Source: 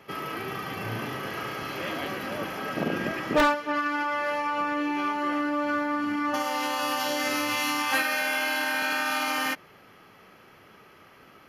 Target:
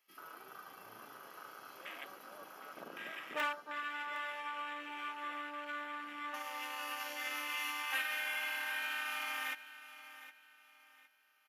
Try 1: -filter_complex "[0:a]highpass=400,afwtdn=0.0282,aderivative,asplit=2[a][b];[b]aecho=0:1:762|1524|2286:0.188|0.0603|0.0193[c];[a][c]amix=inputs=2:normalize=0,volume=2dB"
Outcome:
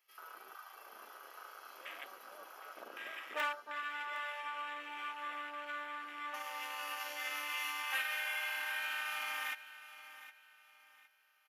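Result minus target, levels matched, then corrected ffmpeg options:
125 Hz band -15.5 dB
-filter_complex "[0:a]highpass=110,afwtdn=0.0282,aderivative,asplit=2[a][b];[b]aecho=0:1:762|1524|2286:0.188|0.0603|0.0193[c];[a][c]amix=inputs=2:normalize=0,volume=2dB"

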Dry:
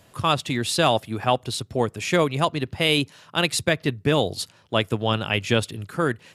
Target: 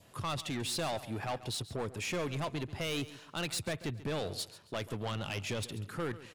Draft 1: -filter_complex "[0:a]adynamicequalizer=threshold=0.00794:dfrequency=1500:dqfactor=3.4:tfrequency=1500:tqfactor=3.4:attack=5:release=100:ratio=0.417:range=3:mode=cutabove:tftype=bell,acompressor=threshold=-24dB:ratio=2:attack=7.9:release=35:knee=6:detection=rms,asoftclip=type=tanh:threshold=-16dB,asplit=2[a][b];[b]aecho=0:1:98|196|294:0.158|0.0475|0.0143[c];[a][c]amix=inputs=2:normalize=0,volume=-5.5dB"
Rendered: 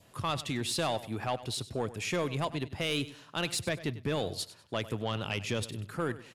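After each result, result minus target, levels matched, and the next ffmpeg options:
echo 40 ms early; soft clip: distortion -8 dB
-filter_complex "[0:a]adynamicequalizer=threshold=0.00794:dfrequency=1500:dqfactor=3.4:tfrequency=1500:tqfactor=3.4:attack=5:release=100:ratio=0.417:range=3:mode=cutabove:tftype=bell,acompressor=threshold=-24dB:ratio=2:attack=7.9:release=35:knee=6:detection=rms,asoftclip=type=tanh:threshold=-16dB,asplit=2[a][b];[b]aecho=0:1:138|276|414:0.158|0.0475|0.0143[c];[a][c]amix=inputs=2:normalize=0,volume=-5.5dB"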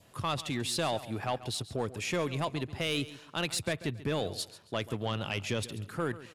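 soft clip: distortion -8 dB
-filter_complex "[0:a]adynamicequalizer=threshold=0.00794:dfrequency=1500:dqfactor=3.4:tfrequency=1500:tqfactor=3.4:attack=5:release=100:ratio=0.417:range=3:mode=cutabove:tftype=bell,acompressor=threshold=-24dB:ratio=2:attack=7.9:release=35:knee=6:detection=rms,asoftclip=type=tanh:threshold=-25dB,asplit=2[a][b];[b]aecho=0:1:138|276|414:0.158|0.0475|0.0143[c];[a][c]amix=inputs=2:normalize=0,volume=-5.5dB"

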